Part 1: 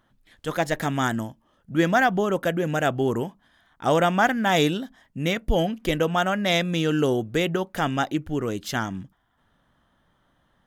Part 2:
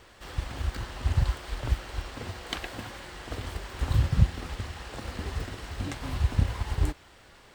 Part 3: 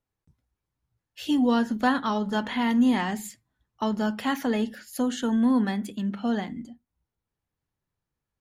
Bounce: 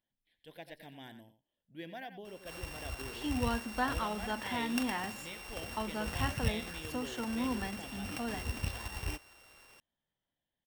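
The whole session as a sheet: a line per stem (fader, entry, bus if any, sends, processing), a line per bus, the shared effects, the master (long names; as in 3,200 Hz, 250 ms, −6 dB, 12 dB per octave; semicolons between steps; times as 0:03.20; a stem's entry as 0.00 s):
−18.0 dB, 0.00 s, no send, echo send −11 dB, phaser with its sweep stopped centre 3,000 Hz, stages 4
−3.0 dB, 2.25 s, no send, no echo send, samples sorted by size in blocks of 16 samples
−6.0 dB, 1.95 s, no send, no echo send, high-shelf EQ 4,400 Hz −9.5 dB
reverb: not used
echo: single-tap delay 91 ms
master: low-shelf EQ 410 Hz −10.5 dB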